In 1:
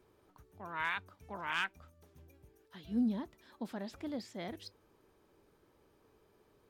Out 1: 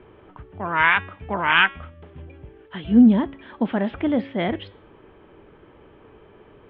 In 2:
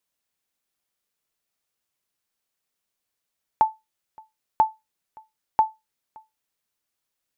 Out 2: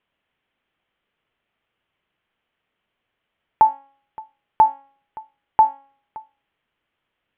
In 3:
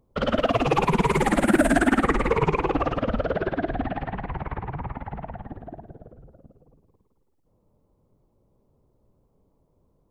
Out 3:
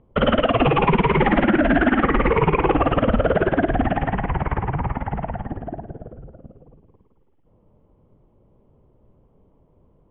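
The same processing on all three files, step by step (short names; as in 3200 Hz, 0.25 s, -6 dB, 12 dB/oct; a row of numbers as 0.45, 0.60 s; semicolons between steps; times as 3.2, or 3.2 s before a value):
Chebyshev low-pass 3200 Hz, order 5; de-hum 275.2 Hz, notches 17; maximiser +15.5 dB; match loudness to -20 LUFS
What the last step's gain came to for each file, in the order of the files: +4.0, -3.5, -7.0 dB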